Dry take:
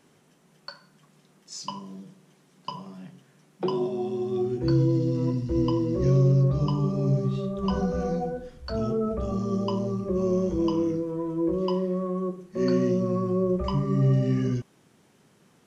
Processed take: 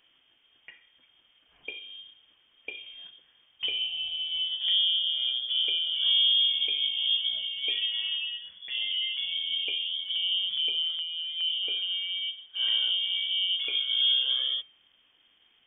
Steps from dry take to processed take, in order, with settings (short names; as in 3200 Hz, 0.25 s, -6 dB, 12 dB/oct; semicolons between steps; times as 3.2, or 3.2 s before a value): de-hum 235.1 Hz, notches 38; 9.74–11.86 LFO notch saw down 2.4 Hz 490–2400 Hz; inverted band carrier 3400 Hz; gain -4 dB